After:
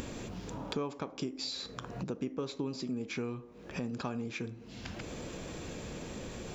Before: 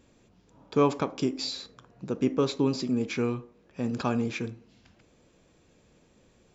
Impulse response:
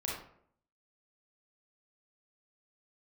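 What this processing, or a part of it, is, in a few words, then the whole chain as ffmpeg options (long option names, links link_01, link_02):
upward and downward compression: -af "acompressor=mode=upward:threshold=-31dB:ratio=2.5,acompressor=threshold=-40dB:ratio=4,volume=4dB"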